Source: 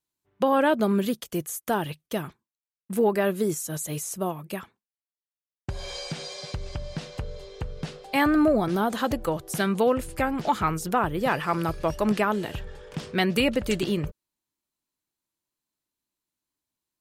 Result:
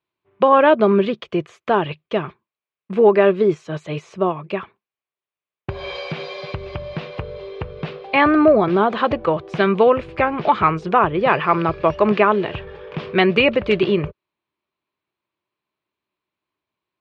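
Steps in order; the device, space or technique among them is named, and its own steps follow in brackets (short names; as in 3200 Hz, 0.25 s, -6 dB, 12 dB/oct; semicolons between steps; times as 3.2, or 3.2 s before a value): guitar cabinet (speaker cabinet 76–3600 Hz, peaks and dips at 260 Hz -5 dB, 390 Hz +7 dB, 610 Hz +4 dB, 1100 Hz +7 dB, 2400 Hz +6 dB); gain +5.5 dB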